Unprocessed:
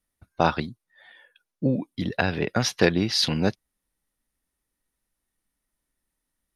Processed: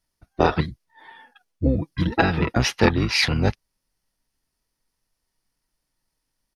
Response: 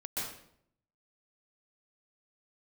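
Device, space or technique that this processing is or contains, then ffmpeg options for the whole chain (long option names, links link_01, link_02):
octave pedal: -filter_complex "[0:a]asettb=1/sr,asplit=3[link_01][link_02][link_03];[link_01]atrim=end=0.554[link_04];[link_02]atrim=start=0.55:end=2.54,asetpts=PTS-STARTPTS,afade=type=in:duration=0.004:curve=qsin,afade=type=out:start_time=1.986:duration=0.004:curve=qsin,aecho=1:1:6.1:0.81,atrim=end_sample=87759[link_05];[link_03]atrim=start=2.536[link_06];[link_04][link_05]acrossfade=duration=0.004:curve1=hsin:curve2=qsin[link_07];[link_07][link_06]acrossfade=duration=0.004:curve1=qsin:curve2=hsin,asplit=2[link_08][link_09];[link_09]asetrate=22050,aresample=44100,atempo=2,volume=0dB[link_10];[link_08][link_10]amix=inputs=2:normalize=0"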